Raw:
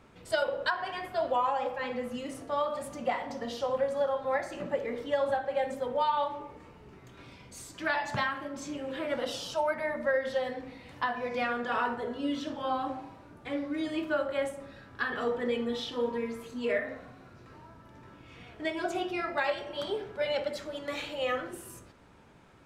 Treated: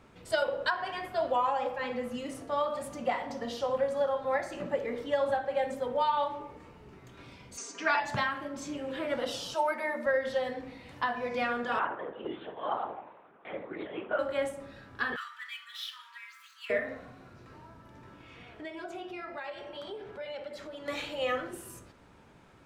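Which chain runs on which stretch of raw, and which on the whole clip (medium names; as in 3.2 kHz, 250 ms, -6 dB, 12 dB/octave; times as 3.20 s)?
7.57–8.00 s: cabinet simulation 280–7500 Hz, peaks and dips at 400 Hz +8 dB, 1.3 kHz +4 dB, 2.5 kHz +3 dB, 3.6 kHz -5 dB, 6.1 kHz +10 dB + comb 4.3 ms, depth 91%
9.54–10.06 s: brick-wall FIR high-pass 200 Hz + treble shelf 9.6 kHz +7.5 dB + comb 5.6 ms, depth 37%
11.79–14.19 s: LPC vocoder at 8 kHz whisper + band-pass 410–2500 Hz
15.16–16.70 s: median filter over 5 samples + steep high-pass 1.2 kHz 48 dB/octave
18.20–20.86 s: tone controls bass -3 dB, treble -5 dB + compression 2.5:1, threshold -41 dBFS + tape noise reduction on one side only encoder only
whole clip: none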